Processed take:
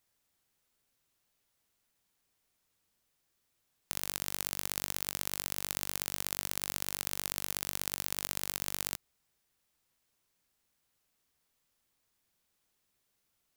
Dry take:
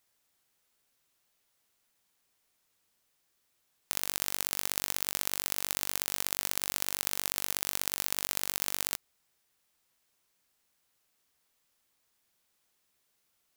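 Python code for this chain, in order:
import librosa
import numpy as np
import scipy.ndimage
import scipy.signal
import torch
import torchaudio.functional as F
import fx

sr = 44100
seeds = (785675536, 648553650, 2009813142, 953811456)

y = fx.low_shelf(x, sr, hz=250.0, db=7.0)
y = F.gain(torch.from_numpy(y), -3.5).numpy()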